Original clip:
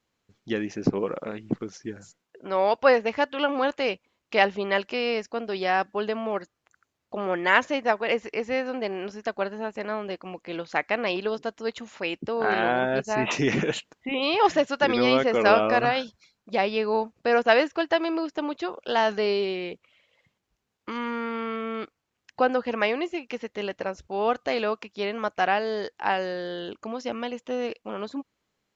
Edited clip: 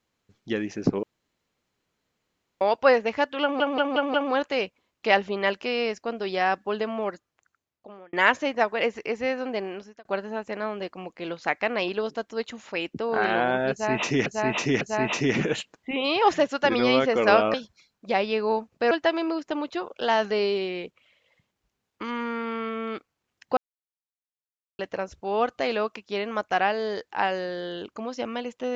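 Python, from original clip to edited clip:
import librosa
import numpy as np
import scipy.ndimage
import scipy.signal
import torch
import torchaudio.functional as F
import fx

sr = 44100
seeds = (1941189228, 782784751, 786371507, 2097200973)

y = fx.edit(x, sr, fx.room_tone_fill(start_s=1.03, length_s=1.58),
    fx.stutter(start_s=3.42, slice_s=0.18, count=5),
    fx.fade_out_span(start_s=6.29, length_s=1.12),
    fx.fade_out_span(start_s=8.9, length_s=0.43),
    fx.repeat(start_s=12.99, length_s=0.55, count=3),
    fx.cut(start_s=15.72, length_s=0.26),
    fx.cut(start_s=17.35, length_s=0.43),
    fx.silence(start_s=22.44, length_s=1.22), tone=tone)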